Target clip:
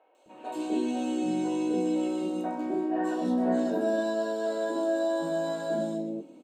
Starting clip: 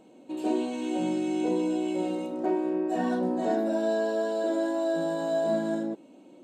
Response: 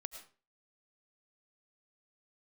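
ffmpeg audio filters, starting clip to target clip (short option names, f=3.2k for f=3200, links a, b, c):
-filter_complex "[0:a]acrossover=split=580|2400[a][b][c];[c]adelay=150[d];[a]adelay=260[e];[e][b][d]amix=inputs=3:normalize=0,asplit=2[f][g];[1:a]atrim=start_sample=2205,adelay=20[h];[g][h]afir=irnorm=-1:irlink=0,volume=-4dB[i];[f][i]amix=inputs=2:normalize=0"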